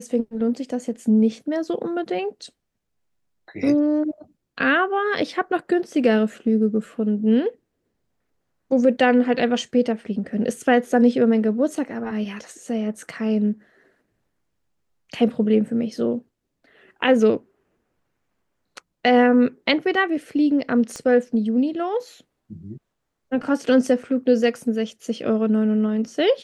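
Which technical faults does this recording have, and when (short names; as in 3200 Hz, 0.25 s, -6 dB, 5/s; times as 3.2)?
20.96 pop -19 dBFS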